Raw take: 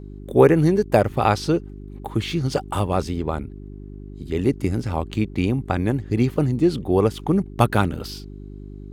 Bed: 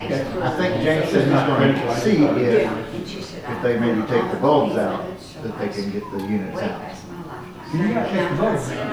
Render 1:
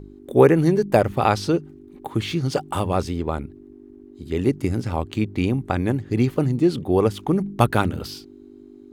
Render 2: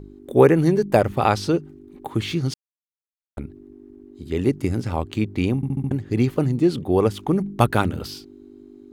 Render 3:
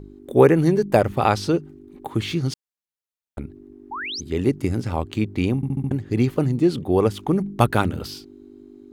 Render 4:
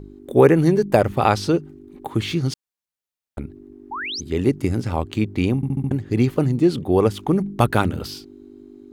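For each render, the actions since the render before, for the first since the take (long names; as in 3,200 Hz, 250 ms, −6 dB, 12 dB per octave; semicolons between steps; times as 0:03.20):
hum removal 50 Hz, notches 4
0:02.54–0:03.37: silence; 0:05.56: stutter in place 0.07 s, 5 plays
0:03.91–0:04.21: sound drawn into the spectrogram rise 780–6,600 Hz −30 dBFS
level +1.5 dB; brickwall limiter −2 dBFS, peak gain reduction 2.5 dB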